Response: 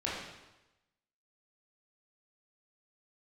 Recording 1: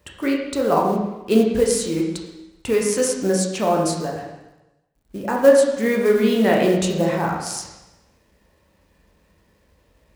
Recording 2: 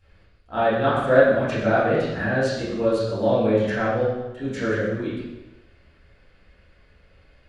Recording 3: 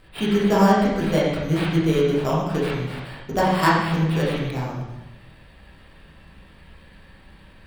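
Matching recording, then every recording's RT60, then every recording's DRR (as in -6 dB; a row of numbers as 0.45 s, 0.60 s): 3; 1.0 s, 1.0 s, 1.0 s; -1.0 dB, -13.0 dB, -7.0 dB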